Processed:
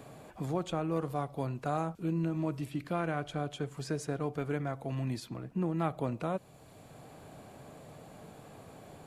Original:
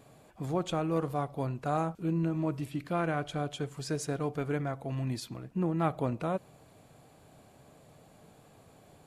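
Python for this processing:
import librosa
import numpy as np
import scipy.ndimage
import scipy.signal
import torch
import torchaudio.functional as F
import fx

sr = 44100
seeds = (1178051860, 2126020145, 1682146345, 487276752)

y = fx.band_squash(x, sr, depth_pct=40)
y = y * librosa.db_to_amplitude(-2.0)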